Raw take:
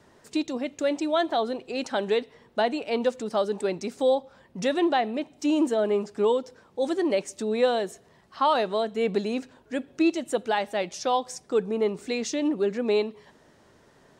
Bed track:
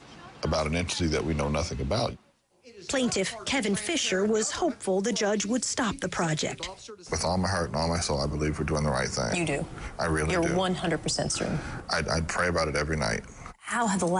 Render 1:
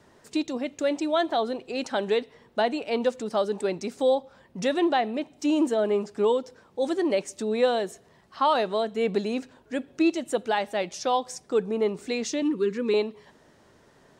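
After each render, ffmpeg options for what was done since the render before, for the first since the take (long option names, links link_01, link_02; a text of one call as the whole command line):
ffmpeg -i in.wav -filter_complex "[0:a]asettb=1/sr,asplit=3[link_01][link_02][link_03];[link_01]atrim=end=12.424[link_04];[link_02]atrim=start=12.42:end=12.94,asetpts=PTS-STARTPTS,afade=type=in:duration=0.004:curve=qsin,afade=type=out:start_time=0.516:duration=0.004:curve=qsin,asuperstop=centerf=690:order=8:qfactor=1.7[link_05];[link_03]atrim=start=12.936[link_06];[link_04][link_05]acrossfade=duration=0.004:curve1=hsin:curve2=qsin[link_07];[link_07][link_06]acrossfade=duration=0.004:curve1=qsin:curve2=hsin" out.wav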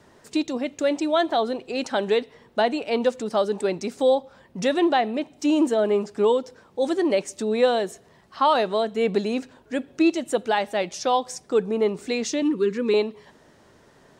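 ffmpeg -i in.wav -af "volume=3dB" out.wav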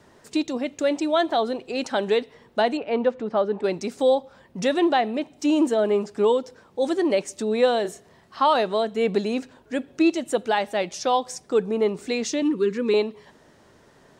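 ffmpeg -i in.wav -filter_complex "[0:a]asettb=1/sr,asplit=3[link_01][link_02][link_03];[link_01]atrim=end=2.774[link_04];[link_02]atrim=start=2.77:end=3.64,asetpts=PTS-STARTPTS,afade=type=in:duration=0.004:curve=qsin,afade=type=out:start_time=0.866:duration=0.004:curve=qsin,lowpass=2200[link_05];[link_03]atrim=start=3.636[link_06];[link_04][link_05]acrossfade=duration=0.004:curve1=hsin:curve2=qsin[link_07];[link_07][link_06]acrossfade=duration=0.004:curve1=qsin:curve2=hsin,asettb=1/sr,asplit=3[link_08][link_09][link_10];[link_08]atrim=end=7.824[link_11];[link_09]atrim=start=7.82:end=8.44,asetpts=PTS-STARTPTS,afade=type=in:duration=0.004:curve=qsin,afade=type=out:start_time=0.616:duration=0.004:curve=qsin,asplit=2[link_12][link_13];[link_13]adelay=29,volume=-6.5dB[link_14];[link_12][link_14]amix=inputs=2:normalize=0,atrim=end_sample=27342[link_15];[link_10]atrim=start=8.436[link_16];[link_11][link_15]acrossfade=duration=0.004:curve1=hsin:curve2=qsin[link_17];[link_17][link_16]acrossfade=duration=0.004:curve1=qsin:curve2=hsin" out.wav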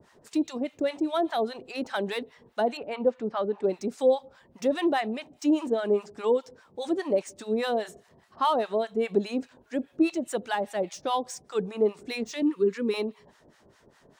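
ffmpeg -i in.wav -filter_complex "[0:a]acrossover=split=2100[link_01][link_02];[link_02]asoftclip=type=tanh:threshold=-32dB[link_03];[link_01][link_03]amix=inputs=2:normalize=0,acrossover=split=810[link_04][link_05];[link_04]aeval=exprs='val(0)*(1-1/2+1/2*cos(2*PI*4.9*n/s))':channel_layout=same[link_06];[link_05]aeval=exprs='val(0)*(1-1/2-1/2*cos(2*PI*4.9*n/s))':channel_layout=same[link_07];[link_06][link_07]amix=inputs=2:normalize=0" out.wav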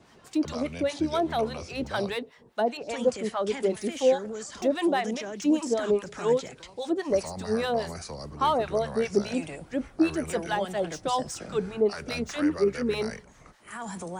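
ffmpeg -i in.wav -i bed.wav -filter_complex "[1:a]volume=-11dB[link_01];[0:a][link_01]amix=inputs=2:normalize=0" out.wav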